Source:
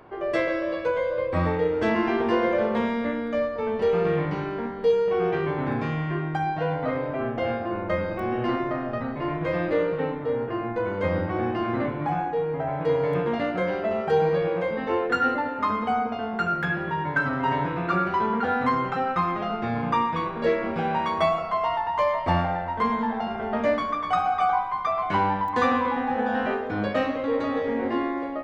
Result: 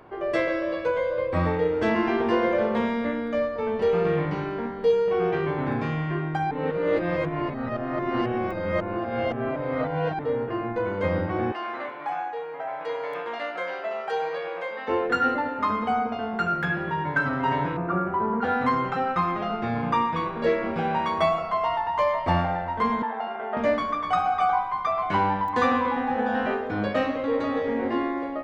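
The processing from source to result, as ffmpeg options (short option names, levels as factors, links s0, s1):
-filter_complex "[0:a]asettb=1/sr,asplit=3[s0][s1][s2];[s0]atrim=end=11.524[s3];[s1]atrim=start=11.52:end=14.88,asetpts=PTS-STARTPTS,afade=t=in:d=0.004:c=qsin,afade=t=out:st=3.356:d=0.004:c=qsin,highpass=720[s4];[s2]atrim=start=14.876[s5];[s3][s4]acrossfade=d=0.004:c1=hsin:c2=qsin[s6];[s6][s5]acrossfade=d=0.004:c1=qsin:c2=hsin,asplit=3[s7][s8][s9];[s7]afade=t=out:st=17.76:d=0.02[s10];[s8]lowpass=1200,afade=t=in:st=17.76:d=0.02,afade=t=out:st=18.41:d=0.02[s11];[s9]afade=t=in:st=18.41:d=0.02[s12];[s10][s11][s12]amix=inputs=3:normalize=0,asettb=1/sr,asplit=3[s13][s14][s15];[s13]atrim=end=23.024[s16];[s14]atrim=start=23.02:end=23.57,asetpts=PTS-STARTPTS,afade=t=in:d=0.004:c=qsin,afade=t=out:st=0.546:d=0.004:c=qsin,highpass=450,lowpass=2800[s17];[s15]atrim=start=23.566[s18];[s16][s17]acrossfade=d=0.004:c1=hsin:c2=qsin[s19];[s19][s18]acrossfade=d=0.004:c1=qsin:c2=hsin,asplit=3[s20][s21][s22];[s20]atrim=end=6.512[s23];[s21]atrim=start=6.508:end=10.192,asetpts=PTS-STARTPTS,areverse[s24];[s22]atrim=start=10.188[s25];[s23][s24]acrossfade=d=0.004:c1=hsin:c2=hsin[s26];[s26][s25]acrossfade=d=0.004:c1=hsin:c2=hsin"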